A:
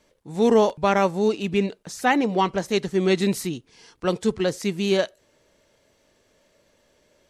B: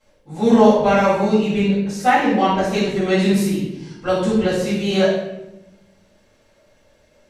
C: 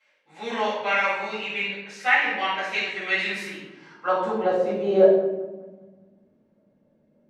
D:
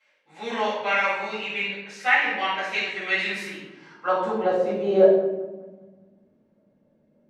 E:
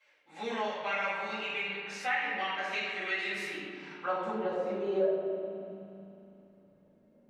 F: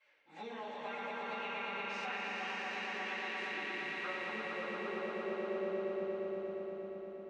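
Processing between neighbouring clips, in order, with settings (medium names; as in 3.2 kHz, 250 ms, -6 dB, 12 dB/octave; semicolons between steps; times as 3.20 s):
reverberation RT60 0.95 s, pre-delay 4 ms, DRR -12.5 dB; trim -10.5 dB
peaking EQ 67 Hz -10.5 dB 1.3 oct; band-pass sweep 2.2 kHz -> 200 Hz, 3.32–5.97 s; feedback echo behind a band-pass 198 ms, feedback 40%, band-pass 740 Hz, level -14.5 dB; trim +5.5 dB
no audible change
compression 2:1, threshold -36 dBFS, peak gain reduction 14 dB; flange 0.59 Hz, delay 1.8 ms, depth 4.2 ms, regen -44%; spring tank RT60 3.3 s, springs 36 ms, chirp 75 ms, DRR 6 dB; trim +2.5 dB
compression 4:1, threshold -41 dBFS, peak gain reduction 14.5 dB; distance through air 100 m; echo with a slow build-up 117 ms, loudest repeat 5, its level -4 dB; trim -2.5 dB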